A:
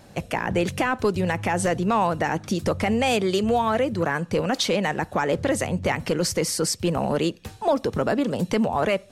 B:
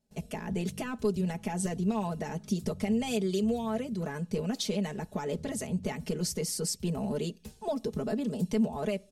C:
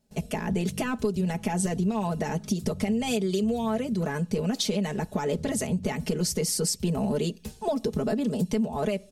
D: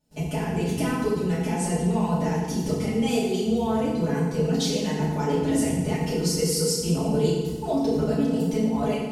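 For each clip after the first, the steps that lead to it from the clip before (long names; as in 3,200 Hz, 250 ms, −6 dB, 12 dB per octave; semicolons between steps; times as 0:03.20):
noise gate with hold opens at −39 dBFS; parametric band 1,400 Hz −13 dB 2.5 octaves; comb filter 4.7 ms, depth 89%; level −7.5 dB
downward compressor, threshold −30 dBFS, peak gain reduction 8 dB; level +7.5 dB
feedback delay network reverb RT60 1.3 s, low-frequency decay 1.35×, high-frequency decay 0.75×, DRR −8 dB; level −6.5 dB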